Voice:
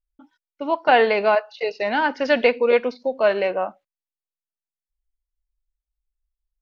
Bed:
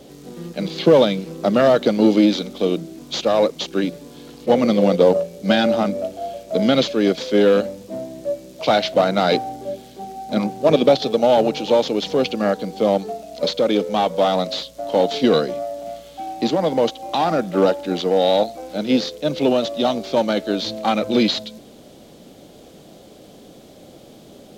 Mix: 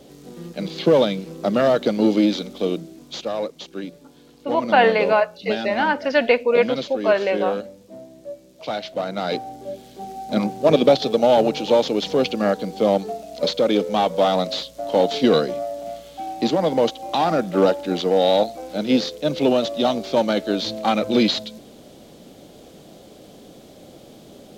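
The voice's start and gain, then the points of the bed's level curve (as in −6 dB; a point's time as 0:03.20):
3.85 s, +0.5 dB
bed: 0:02.69 −3 dB
0:03.53 −10.5 dB
0:08.89 −10.5 dB
0:10.11 −0.5 dB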